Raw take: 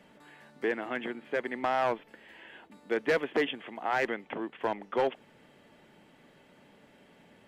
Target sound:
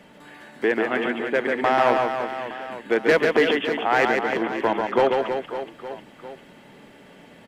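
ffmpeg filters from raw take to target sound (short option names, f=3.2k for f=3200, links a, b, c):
-af "aecho=1:1:140|322|558.6|866.2|1266:0.631|0.398|0.251|0.158|0.1,volume=8.5dB"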